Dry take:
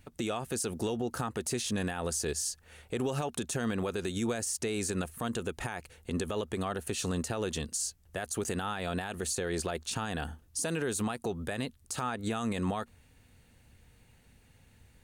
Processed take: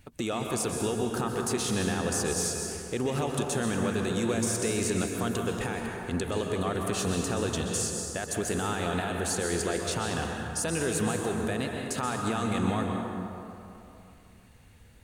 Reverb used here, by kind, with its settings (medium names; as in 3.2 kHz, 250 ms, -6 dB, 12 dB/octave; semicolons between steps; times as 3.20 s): plate-style reverb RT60 2.8 s, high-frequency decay 0.5×, pre-delay 115 ms, DRR 1 dB; trim +2 dB